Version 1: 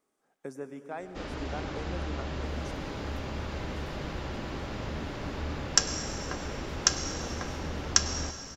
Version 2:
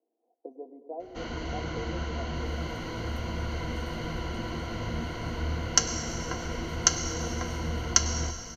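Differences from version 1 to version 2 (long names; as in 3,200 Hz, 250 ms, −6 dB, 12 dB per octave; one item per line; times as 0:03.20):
speech: add elliptic band-pass filter 270–790 Hz, stop band 40 dB
second sound: send +11.5 dB
master: add EQ curve with evenly spaced ripples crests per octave 1.9, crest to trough 13 dB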